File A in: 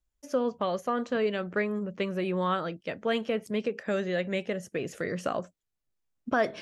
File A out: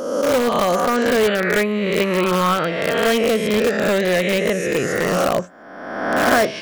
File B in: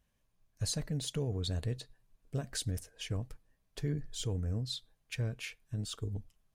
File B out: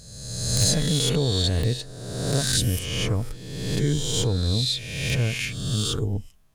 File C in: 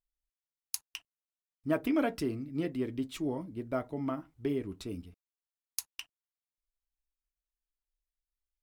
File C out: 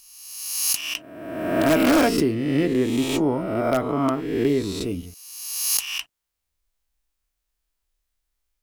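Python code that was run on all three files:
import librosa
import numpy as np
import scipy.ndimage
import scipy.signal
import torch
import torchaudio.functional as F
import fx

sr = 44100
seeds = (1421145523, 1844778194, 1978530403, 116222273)

p1 = fx.spec_swells(x, sr, rise_s=1.33)
p2 = (np.mod(10.0 ** (20.0 / 20.0) * p1 + 1.0, 2.0) - 1.0) / 10.0 ** (20.0 / 20.0)
p3 = p1 + (p2 * 10.0 ** (-6.0 / 20.0))
y = p3 * 10.0 ** (6.5 / 20.0)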